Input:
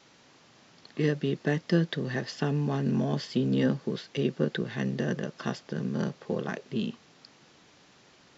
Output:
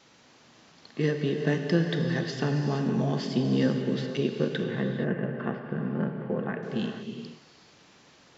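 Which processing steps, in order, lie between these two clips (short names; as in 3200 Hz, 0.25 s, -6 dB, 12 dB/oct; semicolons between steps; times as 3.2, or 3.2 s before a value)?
4.63–6.63 LPF 2300 Hz 24 dB/oct; non-linear reverb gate 0.5 s flat, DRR 3.5 dB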